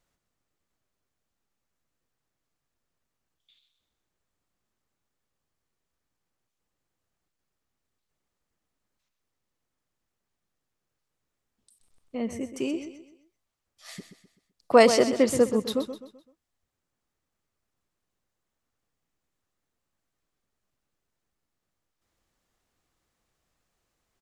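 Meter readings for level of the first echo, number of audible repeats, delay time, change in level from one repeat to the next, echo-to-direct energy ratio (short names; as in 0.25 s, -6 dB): -10.5 dB, 3, 0.128 s, -8.0 dB, -10.0 dB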